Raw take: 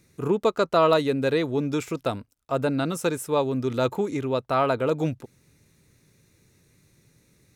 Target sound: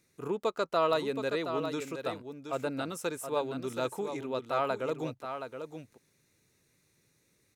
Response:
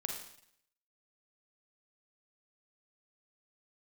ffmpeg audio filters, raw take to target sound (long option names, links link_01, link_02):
-filter_complex "[0:a]lowshelf=frequency=220:gain=-10.5,asplit=2[link_01][link_02];[link_02]aecho=0:1:722:0.398[link_03];[link_01][link_03]amix=inputs=2:normalize=0,volume=-7dB"